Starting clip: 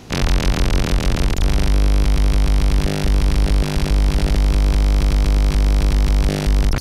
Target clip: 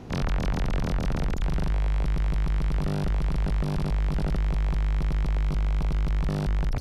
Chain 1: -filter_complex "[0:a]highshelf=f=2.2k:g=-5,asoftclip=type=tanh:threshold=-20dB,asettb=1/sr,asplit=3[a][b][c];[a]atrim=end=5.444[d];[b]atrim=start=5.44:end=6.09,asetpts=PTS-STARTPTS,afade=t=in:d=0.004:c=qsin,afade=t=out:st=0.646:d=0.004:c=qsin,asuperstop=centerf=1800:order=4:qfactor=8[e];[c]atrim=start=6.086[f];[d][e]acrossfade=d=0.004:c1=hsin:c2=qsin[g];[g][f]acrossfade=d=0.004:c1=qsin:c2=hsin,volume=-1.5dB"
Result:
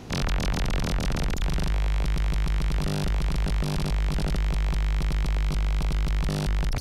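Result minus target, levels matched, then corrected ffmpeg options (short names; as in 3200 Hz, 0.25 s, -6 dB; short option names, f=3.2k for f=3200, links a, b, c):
4000 Hz band +7.0 dB
-filter_complex "[0:a]highshelf=f=2.2k:g=-15,asoftclip=type=tanh:threshold=-20dB,asettb=1/sr,asplit=3[a][b][c];[a]atrim=end=5.444[d];[b]atrim=start=5.44:end=6.09,asetpts=PTS-STARTPTS,afade=t=in:d=0.004:c=qsin,afade=t=out:st=0.646:d=0.004:c=qsin,asuperstop=centerf=1800:order=4:qfactor=8[e];[c]atrim=start=6.086[f];[d][e]acrossfade=d=0.004:c1=hsin:c2=qsin[g];[g][f]acrossfade=d=0.004:c1=qsin:c2=hsin,volume=-1.5dB"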